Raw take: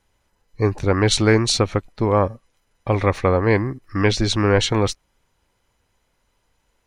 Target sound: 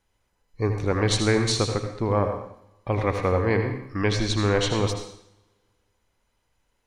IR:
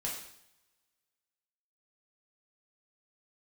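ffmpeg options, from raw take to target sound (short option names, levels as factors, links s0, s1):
-filter_complex "[0:a]asplit=2[s0][s1];[1:a]atrim=start_sample=2205,adelay=78[s2];[s1][s2]afir=irnorm=-1:irlink=0,volume=0.422[s3];[s0][s3]amix=inputs=2:normalize=0,volume=0.501"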